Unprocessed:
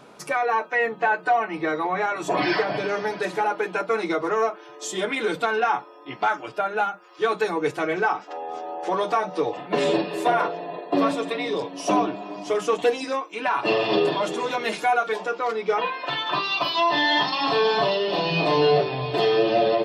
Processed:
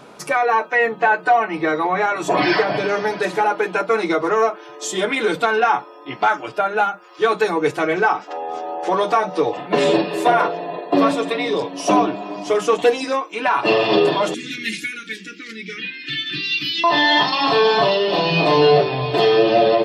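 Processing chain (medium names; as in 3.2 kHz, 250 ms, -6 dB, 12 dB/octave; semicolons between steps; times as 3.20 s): 14.34–16.84 s: elliptic band-stop 300–1900 Hz, stop band 60 dB; trim +5.5 dB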